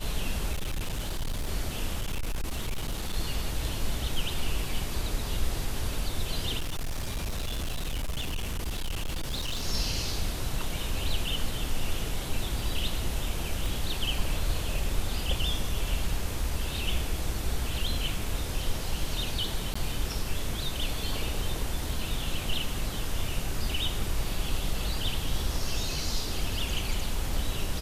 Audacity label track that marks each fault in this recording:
0.530000	1.490000	clipping −27 dBFS
2.010000	3.140000	clipping −26.5 dBFS
6.590000	9.640000	clipping −27.5 dBFS
13.660000	13.660000	click
19.740000	19.750000	drop-out 15 ms

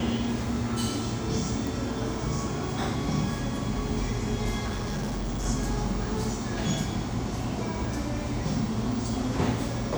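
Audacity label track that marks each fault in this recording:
1.670000	1.670000	click
4.660000	5.460000	clipping −27.5 dBFS

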